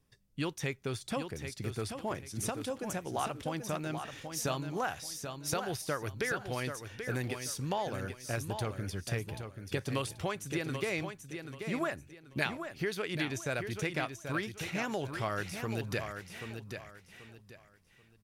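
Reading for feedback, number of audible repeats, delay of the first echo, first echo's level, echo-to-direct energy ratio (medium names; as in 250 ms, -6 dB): 28%, 3, 784 ms, -7.5 dB, -7.0 dB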